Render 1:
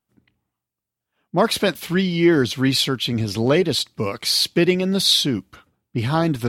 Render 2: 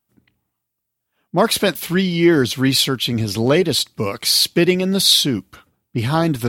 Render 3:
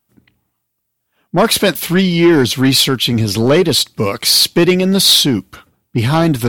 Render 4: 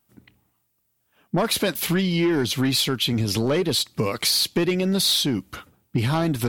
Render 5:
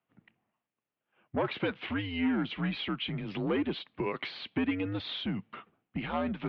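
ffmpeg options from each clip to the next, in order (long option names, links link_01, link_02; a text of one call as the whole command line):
ffmpeg -i in.wav -af "highshelf=frequency=9500:gain=9.5,volume=2dB" out.wav
ffmpeg -i in.wav -af "asoftclip=type=tanh:threshold=-10dB,volume=6.5dB" out.wav
ffmpeg -i in.wav -af "acompressor=threshold=-21dB:ratio=4" out.wav
ffmpeg -i in.wav -af "highpass=frequency=250:width_type=q:width=0.5412,highpass=frequency=250:width_type=q:width=1.307,lowpass=frequency=3100:width_type=q:width=0.5176,lowpass=frequency=3100:width_type=q:width=0.7071,lowpass=frequency=3100:width_type=q:width=1.932,afreqshift=-85,volume=-7dB" out.wav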